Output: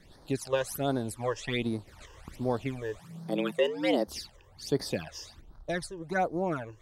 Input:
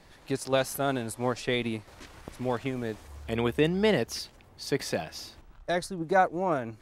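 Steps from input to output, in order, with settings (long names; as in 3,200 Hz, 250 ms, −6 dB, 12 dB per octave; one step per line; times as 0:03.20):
0:02.99–0:04.08: frequency shifter +94 Hz
all-pass phaser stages 12, 1.3 Hz, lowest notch 220–2,700 Hz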